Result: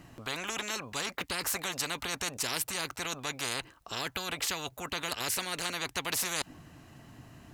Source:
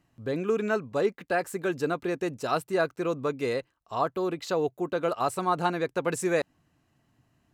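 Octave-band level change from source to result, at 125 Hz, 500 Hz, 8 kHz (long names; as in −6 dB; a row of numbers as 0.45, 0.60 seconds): −8.0, −15.5, +9.5 decibels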